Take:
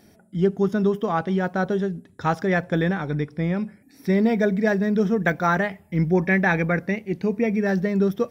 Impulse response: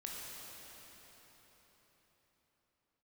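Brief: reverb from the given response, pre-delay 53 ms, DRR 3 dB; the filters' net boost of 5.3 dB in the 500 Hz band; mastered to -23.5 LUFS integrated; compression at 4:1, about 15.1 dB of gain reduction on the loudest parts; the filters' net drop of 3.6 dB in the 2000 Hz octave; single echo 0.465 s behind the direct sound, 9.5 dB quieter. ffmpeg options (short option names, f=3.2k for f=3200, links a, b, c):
-filter_complex "[0:a]equalizer=f=500:t=o:g=7,equalizer=f=2k:t=o:g=-5,acompressor=threshold=-31dB:ratio=4,aecho=1:1:465:0.335,asplit=2[a][b];[1:a]atrim=start_sample=2205,adelay=53[c];[b][c]afir=irnorm=-1:irlink=0,volume=-2.5dB[d];[a][d]amix=inputs=2:normalize=0,volume=7.5dB"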